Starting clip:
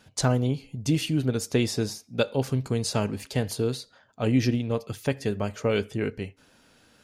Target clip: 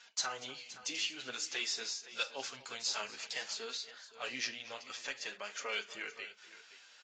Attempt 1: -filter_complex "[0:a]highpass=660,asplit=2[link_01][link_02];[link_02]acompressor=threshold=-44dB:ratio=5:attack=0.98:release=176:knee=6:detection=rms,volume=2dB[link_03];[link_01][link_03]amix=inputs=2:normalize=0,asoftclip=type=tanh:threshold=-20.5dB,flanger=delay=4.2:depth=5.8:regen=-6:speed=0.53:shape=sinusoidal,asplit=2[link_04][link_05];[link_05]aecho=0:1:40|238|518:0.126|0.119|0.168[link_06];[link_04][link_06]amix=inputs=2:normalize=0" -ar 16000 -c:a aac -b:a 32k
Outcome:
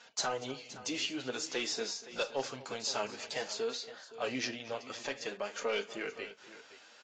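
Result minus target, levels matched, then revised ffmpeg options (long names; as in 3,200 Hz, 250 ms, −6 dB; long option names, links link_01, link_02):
500 Hz band +9.0 dB
-filter_complex "[0:a]highpass=1500,asplit=2[link_01][link_02];[link_02]acompressor=threshold=-44dB:ratio=5:attack=0.98:release=176:knee=6:detection=rms,volume=2dB[link_03];[link_01][link_03]amix=inputs=2:normalize=0,asoftclip=type=tanh:threshold=-20.5dB,flanger=delay=4.2:depth=5.8:regen=-6:speed=0.53:shape=sinusoidal,asplit=2[link_04][link_05];[link_05]aecho=0:1:40|238|518:0.126|0.119|0.168[link_06];[link_04][link_06]amix=inputs=2:normalize=0" -ar 16000 -c:a aac -b:a 32k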